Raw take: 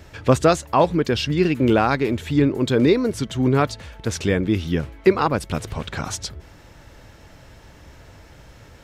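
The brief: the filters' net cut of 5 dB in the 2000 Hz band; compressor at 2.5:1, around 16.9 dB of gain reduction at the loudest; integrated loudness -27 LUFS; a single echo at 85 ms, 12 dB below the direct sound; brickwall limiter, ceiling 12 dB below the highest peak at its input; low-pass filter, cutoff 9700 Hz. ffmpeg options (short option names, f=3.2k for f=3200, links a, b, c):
-af "lowpass=9.7k,equalizer=f=2k:t=o:g=-7,acompressor=threshold=-38dB:ratio=2.5,alimiter=level_in=6.5dB:limit=-24dB:level=0:latency=1,volume=-6.5dB,aecho=1:1:85:0.251,volume=14dB"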